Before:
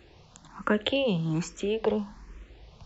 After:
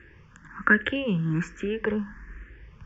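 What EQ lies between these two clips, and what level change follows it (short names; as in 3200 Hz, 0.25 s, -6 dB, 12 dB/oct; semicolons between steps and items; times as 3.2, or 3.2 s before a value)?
air absorption 98 m; bell 1700 Hz +13.5 dB 0.44 oct; fixed phaser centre 1700 Hz, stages 4; +3.5 dB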